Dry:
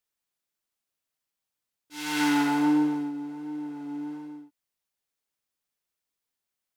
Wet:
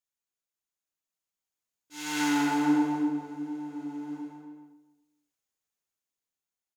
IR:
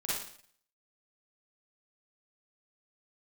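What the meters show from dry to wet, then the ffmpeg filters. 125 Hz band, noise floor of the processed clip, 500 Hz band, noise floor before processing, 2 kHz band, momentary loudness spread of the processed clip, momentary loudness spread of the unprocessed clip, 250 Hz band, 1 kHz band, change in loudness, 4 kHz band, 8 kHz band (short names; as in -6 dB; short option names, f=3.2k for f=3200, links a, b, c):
-1.0 dB, under -85 dBFS, -1.0 dB, under -85 dBFS, -2.0 dB, 18 LU, 18 LU, -2.0 dB, -1.0 dB, -2.0 dB, -2.5 dB, +1.0 dB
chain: -filter_complex "[0:a]equalizer=f=6.7k:w=6:g=8.5,dynaudnorm=f=470:g=7:m=6.5dB,asplit=2[a][b];[b]adelay=274,lowpass=f=1.5k:p=1,volume=-4dB,asplit=2[c][d];[d]adelay=274,lowpass=f=1.5k:p=1,volume=0.18,asplit=2[e][f];[f]adelay=274,lowpass=f=1.5k:p=1,volume=0.18[g];[c][e][g]amix=inputs=3:normalize=0[h];[a][h]amix=inputs=2:normalize=0,volume=-8.5dB"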